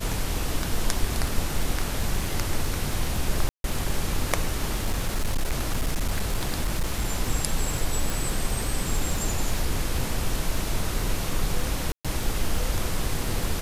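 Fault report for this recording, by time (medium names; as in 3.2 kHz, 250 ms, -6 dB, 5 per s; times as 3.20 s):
crackle 30 per s -27 dBFS
3.49–3.64 s: dropout 152 ms
4.68–7.11 s: clipped -20 dBFS
8.10 s: pop
11.92–12.05 s: dropout 126 ms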